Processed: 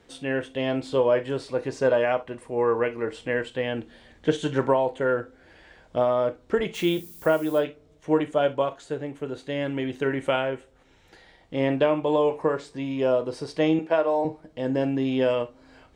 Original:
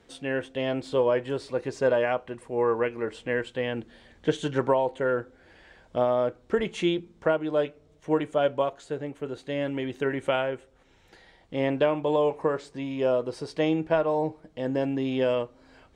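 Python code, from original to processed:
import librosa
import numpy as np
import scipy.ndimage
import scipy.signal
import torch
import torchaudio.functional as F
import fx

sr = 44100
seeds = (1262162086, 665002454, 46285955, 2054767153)

y = fx.dmg_noise_colour(x, sr, seeds[0], colour='violet', level_db=-48.0, at=(6.74, 7.58), fade=0.02)
y = fx.highpass(y, sr, hz=320.0, slope=12, at=(13.79, 14.25))
y = fx.rev_gated(y, sr, seeds[1], gate_ms=80, shape='flat', drr_db=11.0)
y = y * librosa.db_to_amplitude(1.5)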